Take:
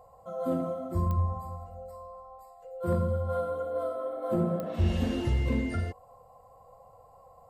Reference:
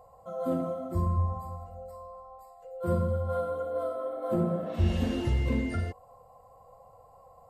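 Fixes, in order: clip repair -18.5 dBFS; de-click

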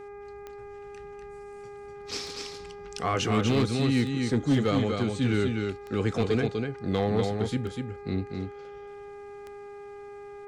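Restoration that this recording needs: clip repair -17 dBFS; de-click; de-hum 406.7 Hz, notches 6; inverse comb 0.246 s -4.5 dB

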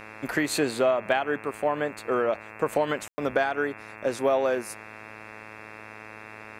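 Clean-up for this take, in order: de-hum 108.3 Hz, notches 25; room tone fill 3.08–3.18

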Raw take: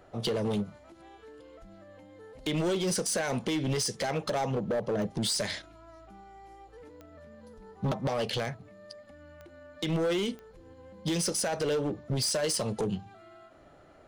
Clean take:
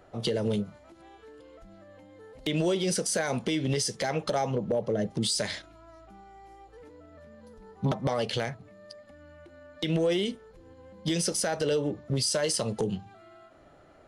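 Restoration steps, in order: clip repair -25 dBFS; de-click

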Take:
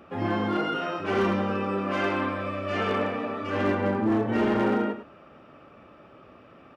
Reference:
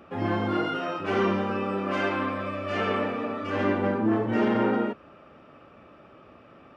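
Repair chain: clip repair -18 dBFS; inverse comb 0.101 s -10.5 dB

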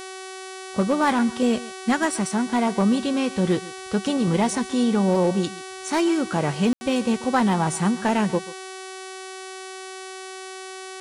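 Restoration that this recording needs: clip repair -12.5 dBFS; de-hum 377.9 Hz, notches 29; room tone fill 6.73–6.81; inverse comb 0.136 s -18.5 dB

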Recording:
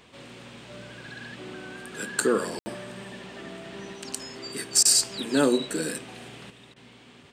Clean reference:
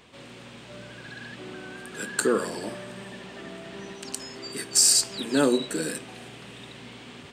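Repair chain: room tone fill 2.59–2.66; interpolate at 4.83/6.74, 21 ms; gain correction +7.5 dB, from 6.5

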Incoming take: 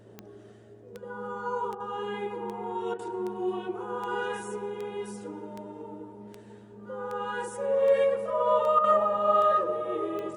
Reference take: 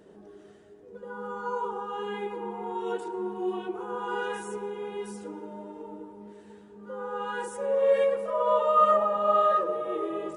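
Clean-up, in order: de-click; de-hum 112.5 Hz, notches 6; interpolate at 1.75/2.94/8.79, 49 ms

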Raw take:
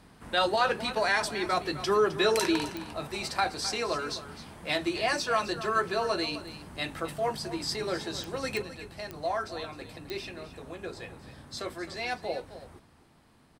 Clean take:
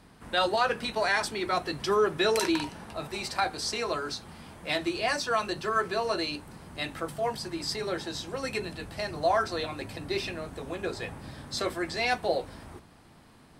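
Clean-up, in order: de-click; inverse comb 0.261 s -13.5 dB; gain 0 dB, from 8.62 s +6 dB

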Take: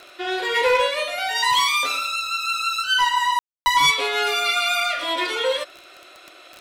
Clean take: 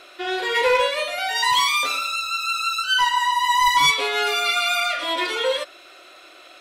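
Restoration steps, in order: de-click; room tone fill 3.39–3.66

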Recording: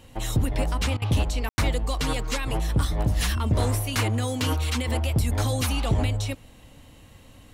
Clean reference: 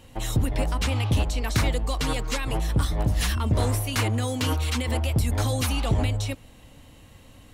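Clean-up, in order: room tone fill 1.49–1.58; interpolate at 0.97, 47 ms

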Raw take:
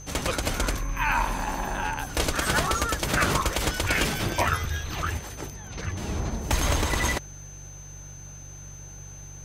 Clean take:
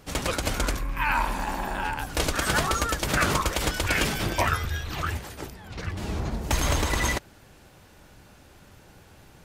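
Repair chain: de-hum 48.2 Hz, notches 3; notch 6200 Hz, Q 30

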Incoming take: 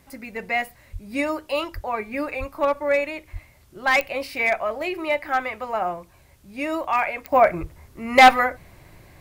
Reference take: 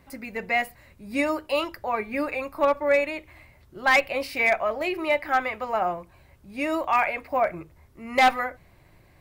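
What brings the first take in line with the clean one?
de-click; de-plosive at 0.92/1.74/2.39/3.32/7.6; expander -44 dBFS, range -21 dB; gain correction -7.5 dB, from 7.32

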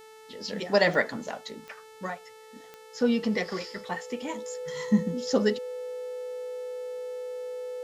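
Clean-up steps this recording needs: de-click; de-hum 438.1 Hz, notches 33; notch 500 Hz, Q 30; expander -42 dBFS, range -21 dB

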